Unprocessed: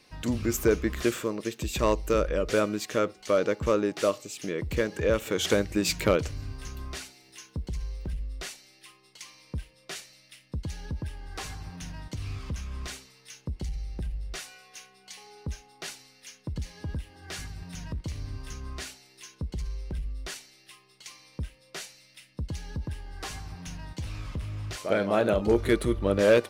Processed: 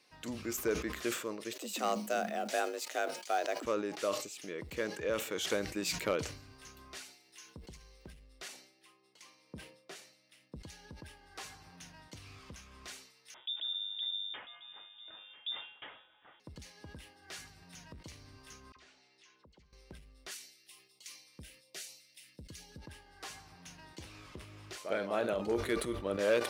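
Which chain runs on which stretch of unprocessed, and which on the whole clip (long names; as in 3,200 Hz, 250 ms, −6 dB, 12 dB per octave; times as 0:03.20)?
0:01.53–0:03.65: mu-law and A-law mismatch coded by A + high-shelf EQ 3,900 Hz +6 dB + frequency shifter +160 Hz
0:08.48–0:10.56: high-pass filter 140 Hz + tilt shelving filter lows +6 dB, about 930 Hz
0:13.34–0:16.40: single-tap delay 995 ms −15 dB + voice inversion scrambler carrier 3,600 Hz
0:18.72–0:19.73: Gaussian smoothing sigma 1.5 samples + all-pass dispersion lows, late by 43 ms, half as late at 1,700 Hz + downward compressor 2.5 to 1, threshold −52 dBFS
0:20.31–0:22.78: high-shelf EQ 7,500 Hz +7.5 dB + notch on a step sequencer 8.3 Hz 690–1,600 Hz
0:23.78–0:24.78: parametric band 360 Hz +8.5 dB 0.44 octaves + one half of a high-frequency compander encoder only
whole clip: high-pass filter 380 Hz 6 dB per octave; level that may fall only so fast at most 89 dB per second; level −7.5 dB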